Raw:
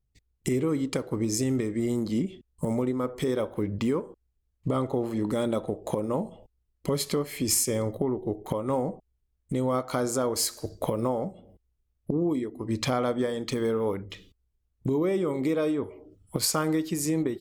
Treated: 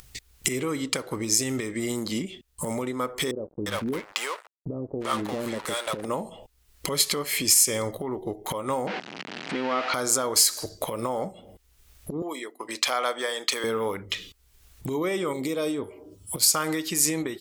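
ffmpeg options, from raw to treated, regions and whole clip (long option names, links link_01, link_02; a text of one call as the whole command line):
ffmpeg -i in.wav -filter_complex "[0:a]asettb=1/sr,asplit=3[link_01][link_02][link_03];[link_01]atrim=end=3.314[link_04];[link_02]atrim=start=3.31:end=6.05,asetpts=PTS-STARTPTS,afade=type=in:duration=0.004:curve=qsin,afade=type=out:start_time=2.736:duration=0.004:curve=qsin,bandreject=frequency=840:width=25,aeval=exprs='sgn(val(0))*max(abs(val(0))-0.00841,0)':channel_layout=same,acrossover=split=530[link_05][link_06];[link_06]adelay=350[link_07];[link_05][link_07]amix=inputs=2:normalize=0,atrim=end_sample=120834[link_08];[link_03]atrim=start=6.046[link_09];[link_04][link_08]acrossfade=duration=0.004:curve1=hsin:curve2=qsin[link_10];[link_10][link_09]acrossfade=duration=0.004:curve1=qsin:curve2=hsin,asettb=1/sr,asplit=3[link_11][link_12][link_13];[link_11]atrim=end=8.874[link_14];[link_12]atrim=start=8.87:end=9.94,asetpts=PTS-STARTPTS,afade=type=in:duration=0.004:curve=qsin,afade=type=out:start_time=1.066:duration=0.004:curve=qsin,aeval=exprs='val(0)+0.5*0.0355*sgn(val(0))':channel_layout=same,highpass=frequency=200:width=0.5412,highpass=frequency=200:width=1.3066,equalizer=frequency=530:width_type=q:width=4:gain=-4,equalizer=frequency=1100:width_type=q:width=4:gain=-4,equalizer=frequency=3600:width_type=q:width=4:gain=-6,lowpass=frequency=3900:width=0.5412,lowpass=frequency=3900:width=1.3066[link_15];[link_13]atrim=start=9.936[link_16];[link_14][link_15]acrossfade=duration=0.004:curve1=hsin:curve2=qsin[link_17];[link_17][link_16]acrossfade=duration=0.004:curve1=qsin:curve2=hsin,asettb=1/sr,asplit=3[link_18][link_19][link_20];[link_18]atrim=end=12.224[link_21];[link_19]atrim=start=12.22:end=13.64,asetpts=PTS-STARTPTS,afade=type=in:duration=0.004:curve=qsin,afade=type=out:start_time=1.416:duration=0.004:curve=qsin,highpass=520,agate=range=-33dB:threshold=-45dB:ratio=3:release=100:detection=peak[link_22];[link_20]atrim=start=13.636[link_23];[link_21][link_22]acrossfade=duration=0.004:curve1=hsin:curve2=qsin[link_24];[link_24][link_23]acrossfade=duration=0.004:curve1=qsin:curve2=hsin,asettb=1/sr,asplit=3[link_25][link_26][link_27];[link_25]atrim=end=15.334[link_28];[link_26]atrim=start=15.33:end=16.55,asetpts=PTS-STARTPTS,afade=type=in:duration=0.004:curve=qsin,afade=type=out:start_time=1.216:duration=0.004:curve=qsin,highpass=51,equalizer=frequency=1600:width_type=o:width=1.9:gain=-9.5,bandreject=frequency=197.1:width_type=h:width=4,bandreject=frequency=394.2:width_type=h:width=4,bandreject=frequency=591.3:width_type=h:width=4,bandreject=frequency=788.4:width_type=h:width=4,bandreject=frequency=985.5:width_type=h:width=4,bandreject=frequency=1182.6:width_type=h:width=4,bandreject=frequency=1379.7:width_type=h:width=4,bandreject=frequency=1576.8:width_type=h:width=4,bandreject=frequency=1773.9:width_type=h:width=4[link_29];[link_27]atrim=start=16.546[link_30];[link_28][link_29]acrossfade=duration=0.004:curve1=hsin:curve2=qsin[link_31];[link_31][link_30]acrossfade=duration=0.004:curve1=qsin:curve2=hsin,alimiter=limit=-20dB:level=0:latency=1:release=164,acompressor=mode=upward:threshold=-32dB:ratio=2.5,tiltshelf=frequency=760:gain=-8,volume=4.5dB" out.wav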